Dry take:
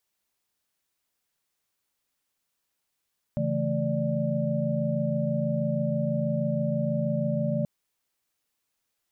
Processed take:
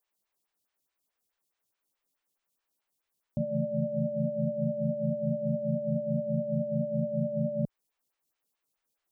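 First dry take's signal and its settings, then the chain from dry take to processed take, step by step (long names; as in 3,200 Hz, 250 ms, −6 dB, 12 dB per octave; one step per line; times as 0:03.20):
held notes C#3/E3/A3/D5 sine, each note −29.5 dBFS 4.28 s
phaser with staggered stages 4.7 Hz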